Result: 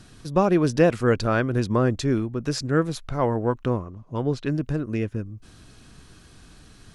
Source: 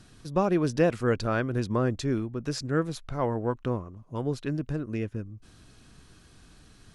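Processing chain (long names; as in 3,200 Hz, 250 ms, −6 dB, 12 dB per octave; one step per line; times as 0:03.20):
0:03.85–0:04.45: low-pass filter 6,300 Hz 12 dB per octave
level +5 dB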